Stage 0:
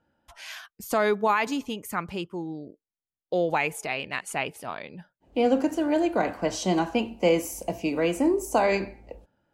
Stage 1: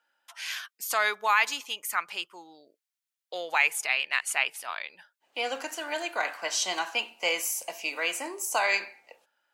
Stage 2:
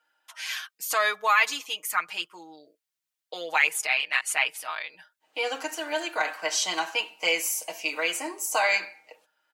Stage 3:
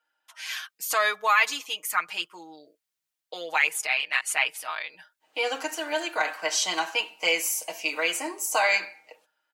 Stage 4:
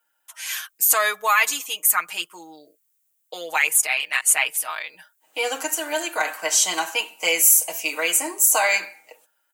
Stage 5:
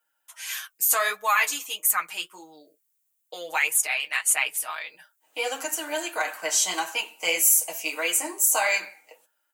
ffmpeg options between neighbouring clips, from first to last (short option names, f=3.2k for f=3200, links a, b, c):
-af "highpass=1.4k,volume=6dB"
-af "aecho=1:1:6.4:0.78"
-af "dynaudnorm=f=140:g=7:m=7dB,volume=-5.5dB"
-af "aexciter=amount=4.8:drive=3.3:freq=6.7k,volume=2.5dB"
-af "flanger=delay=8:depth=5.5:regen=-37:speed=1.6:shape=sinusoidal"